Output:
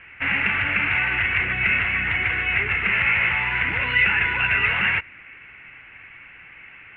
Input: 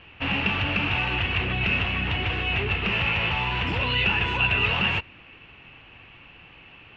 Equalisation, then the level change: synth low-pass 2100 Hz, resonance Q 8.7; bell 1500 Hz +9.5 dB 0.43 oct; -5.0 dB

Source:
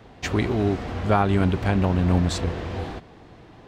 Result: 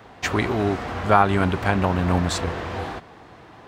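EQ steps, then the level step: HPF 50 Hz; bell 1200 Hz +9 dB 2.2 oct; high shelf 6600 Hz +9.5 dB; -2.0 dB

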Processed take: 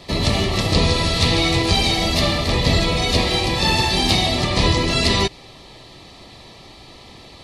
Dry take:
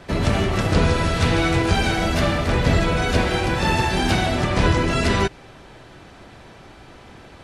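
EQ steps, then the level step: Butterworth band-stop 1500 Hz, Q 3.9; bell 4200 Hz +12 dB 0.71 oct; high shelf 8500 Hz +7.5 dB; 0.0 dB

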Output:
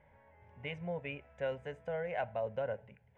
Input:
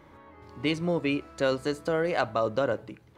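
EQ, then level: LPF 2900 Hz 12 dB/oct; fixed phaser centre 1200 Hz, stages 6; -7.5 dB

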